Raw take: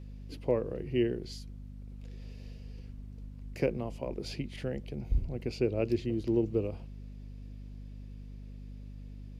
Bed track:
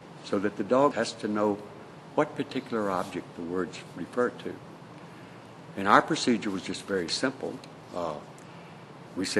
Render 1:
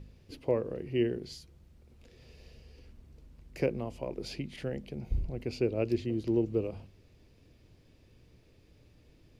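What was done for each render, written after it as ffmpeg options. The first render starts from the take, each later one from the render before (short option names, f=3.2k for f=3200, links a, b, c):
-af "bandreject=f=50:t=h:w=4,bandreject=f=100:t=h:w=4,bandreject=f=150:t=h:w=4,bandreject=f=200:t=h:w=4,bandreject=f=250:t=h:w=4"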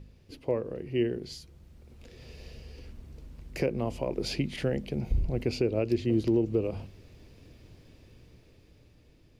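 -af "dynaudnorm=f=370:g=9:m=8dB,alimiter=limit=-16.5dB:level=0:latency=1:release=246"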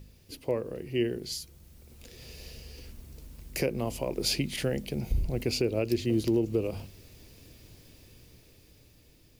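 -af "aemphasis=mode=production:type=75fm"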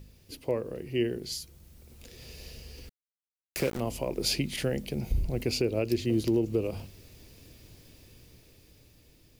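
-filter_complex "[0:a]asettb=1/sr,asplit=3[a][b][c];[a]atrim=end=2.894[d];[b]atrim=start=2.89:end=3.8,asetpts=PTS-STARTPTS,afade=t=in:d=0.004:c=qsin,afade=t=out:st=0.906:d=0.004:c=qsin,aeval=exprs='val(0)*gte(abs(val(0)),0.0237)':c=same[e];[c]atrim=start=3.796[f];[d][e]acrossfade=d=0.004:c1=hsin:c2=qsin[g];[g][f]acrossfade=d=0.004:c1=qsin:c2=hsin"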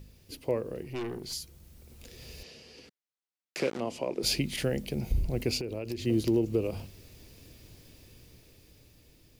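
-filter_complex "[0:a]asettb=1/sr,asplit=3[a][b][c];[a]atrim=end=0.834[d];[b]atrim=start=0.83:end=1.33,asetpts=PTS-STARTPTS,afade=t=in:d=0.004:c=qsin,afade=t=out:st=0.496:d=0.004:c=qsin,aeval=exprs='(tanh(39.8*val(0)+0.3)-tanh(0.3))/39.8':c=same[e];[c]atrim=start=1.326[f];[d][e]acrossfade=d=0.004:c1=hsin:c2=qsin[g];[g][f]acrossfade=d=0.004:c1=qsin:c2=hsin,asettb=1/sr,asplit=3[h][i][j];[h]atrim=end=2.434[k];[i]atrim=start=2.43:end=4.23,asetpts=PTS-STARTPTS,afade=t=in:d=0.004:c=qsin,afade=t=out:st=1.796:d=0.004:c=qsin,highpass=210,lowpass=6.2k[l];[j]atrim=start=4.226[m];[k][l]acrossfade=d=0.004:c1=hsin:c2=qsin[n];[n][m]acrossfade=d=0.004:c1=qsin:c2=hsin,asettb=1/sr,asplit=3[o][p][q];[o]atrim=end=5.574[r];[p]atrim=start=5.57:end=6.06,asetpts=PTS-STARTPTS,afade=t=in:d=0.004:c=qsin,afade=t=out:st=0.486:d=0.004:c=qsin,acompressor=threshold=-31dB:ratio=6:attack=3.2:release=140:knee=1:detection=peak[s];[q]atrim=start=6.056[t];[r][s]acrossfade=d=0.004:c1=hsin:c2=qsin[u];[u][t]acrossfade=d=0.004:c1=qsin:c2=hsin"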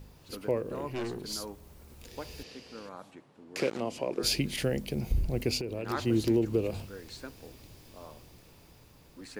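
-filter_complex "[1:a]volume=-16.5dB[a];[0:a][a]amix=inputs=2:normalize=0"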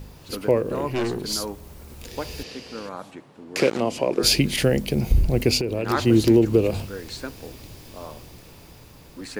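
-af "volume=10dB"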